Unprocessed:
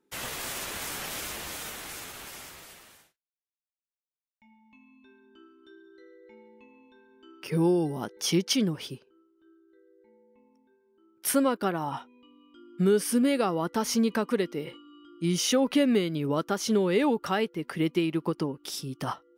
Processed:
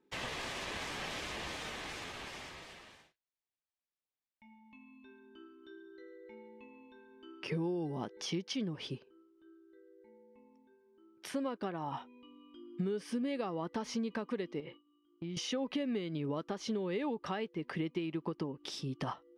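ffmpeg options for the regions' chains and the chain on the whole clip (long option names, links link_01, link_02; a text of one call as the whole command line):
ffmpeg -i in.wav -filter_complex "[0:a]asettb=1/sr,asplit=3[link_01][link_02][link_03];[link_01]atrim=end=14.604[link_04];[link_02]atrim=start=14.6:end=15.37,asetpts=PTS-STARTPTS,afade=type=in:duration=0.004:curve=qsin,afade=type=out:start_time=0.766:duration=0.004:curve=qsin,agate=range=-33dB:threshold=-40dB:ratio=3:release=100:detection=peak,lowpass=3800,acompressor=threshold=-39dB:ratio=5:attack=3.2:release=140:knee=1:detection=peak[link_05];[link_03]atrim=start=15.366[link_06];[link_04][link_05]acrossfade=duration=0.004:curve1=hsin:curve2=qsin[link_07];[link_07][link_06]acrossfade=duration=0.004:curve1=qsin:curve2=hsin,acompressor=threshold=-34dB:ratio=5,lowpass=4300,bandreject=frequency=1400:width=9.3" out.wav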